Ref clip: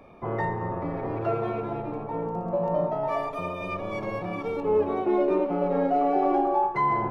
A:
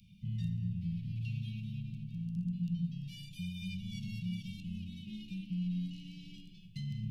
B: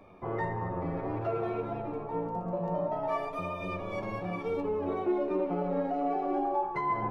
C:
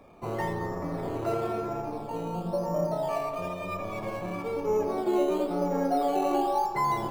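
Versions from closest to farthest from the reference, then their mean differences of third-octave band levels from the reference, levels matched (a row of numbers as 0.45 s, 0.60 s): B, C, A; 1.5 dB, 6.0 dB, 18.5 dB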